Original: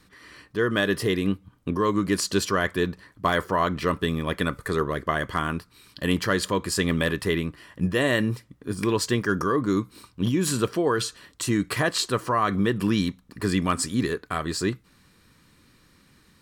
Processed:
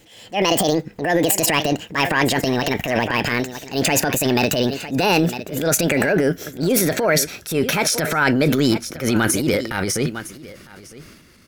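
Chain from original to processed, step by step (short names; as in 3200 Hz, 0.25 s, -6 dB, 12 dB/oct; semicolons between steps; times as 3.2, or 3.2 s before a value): speed glide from 171% -> 115%; echo 0.955 s -19.5 dB; transient shaper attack -9 dB, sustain +8 dB; gain +6.5 dB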